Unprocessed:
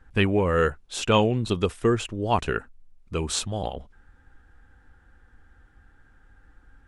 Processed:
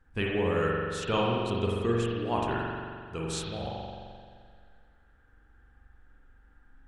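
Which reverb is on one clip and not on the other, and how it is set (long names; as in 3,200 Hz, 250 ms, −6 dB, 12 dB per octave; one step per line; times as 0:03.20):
spring reverb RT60 2 s, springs 43 ms, chirp 50 ms, DRR −3 dB
level −9.5 dB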